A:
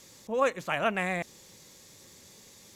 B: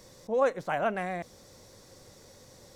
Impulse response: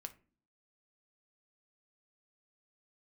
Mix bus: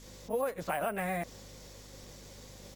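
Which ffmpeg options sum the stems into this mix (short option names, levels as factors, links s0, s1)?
-filter_complex "[0:a]acompressor=threshold=0.0355:ratio=6,aeval=exprs='val(0)+0.00447*(sin(2*PI*50*n/s)+sin(2*PI*2*50*n/s)/2+sin(2*PI*3*50*n/s)/3+sin(2*PI*4*50*n/s)/4+sin(2*PI*5*50*n/s)/5)':c=same,volume=0.668[s0];[1:a]agate=range=0.0224:threshold=0.00282:ratio=3:detection=peak,acrusher=samples=4:mix=1:aa=0.000001,volume=-1,adelay=14,volume=1.19[s1];[s0][s1]amix=inputs=2:normalize=0,equalizer=f=69:t=o:w=0.48:g=-11.5,acompressor=threshold=0.0355:ratio=10"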